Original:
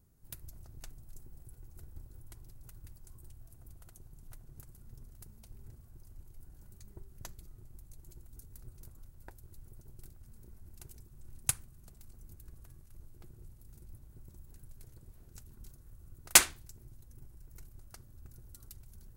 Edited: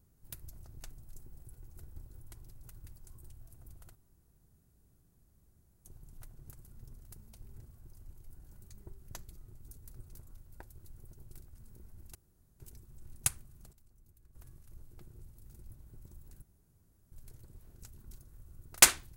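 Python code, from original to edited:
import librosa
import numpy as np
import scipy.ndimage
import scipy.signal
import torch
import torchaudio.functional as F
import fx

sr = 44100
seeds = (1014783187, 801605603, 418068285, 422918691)

y = fx.edit(x, sr, fx.insert_room_tone(at_s=3.95, length_s=1.9),
    fx.cut(start_s=7.72, length_s=0.58),
    fx.insert_room_tone(at_s=10.83, length_s=0.45),
    fx.clip_gain(start_s=11.96, length_s=0.62, db=-11.0),
    fx.insert_room_tone(at_s=14.65, length_s=0.7), tone=tone)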